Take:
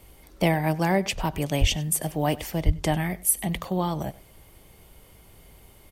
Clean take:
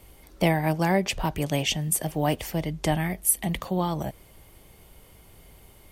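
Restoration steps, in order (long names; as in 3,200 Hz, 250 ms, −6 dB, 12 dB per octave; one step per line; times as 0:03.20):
high-pass at the plosives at 0:01.60/0:02.65
echo removal 97 ms −20.5 dB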